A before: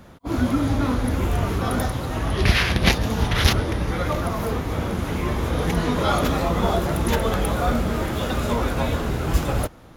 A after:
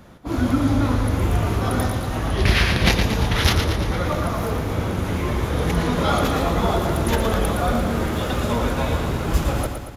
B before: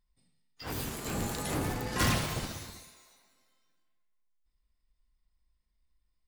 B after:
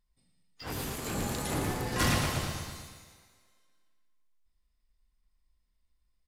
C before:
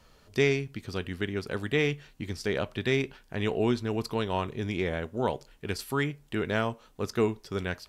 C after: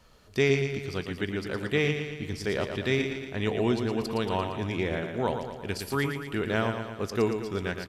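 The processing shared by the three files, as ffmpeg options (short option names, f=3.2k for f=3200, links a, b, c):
-af "aresample=32000,aresample=44100,aeval=exprs='clip(val(0),-1,0.335)':c=same,aecho=1:1:115|230|345|460|575|690|805:0.447|0.259|0.15|0.0872|0.0505|0.0293|0.017"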